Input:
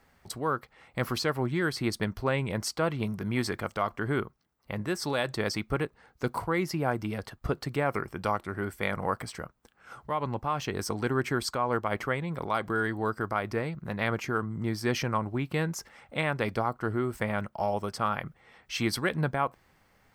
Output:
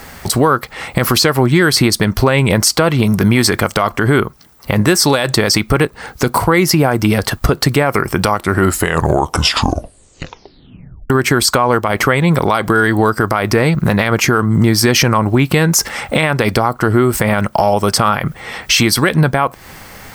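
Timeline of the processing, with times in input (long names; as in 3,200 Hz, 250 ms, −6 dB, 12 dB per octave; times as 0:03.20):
0:08.50: tape stop 2.60 s
whole clip: downward compressor, threshold −36 dBFS; high-shelf EQ 4,500 Hz +8.5 dB; boost into a limiter +29 dB; level −1 dB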